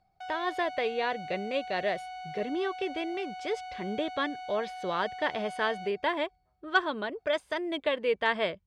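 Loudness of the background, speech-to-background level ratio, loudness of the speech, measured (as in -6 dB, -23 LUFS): -41.5 LUFS, 9.5 dB, -32.0 LUFS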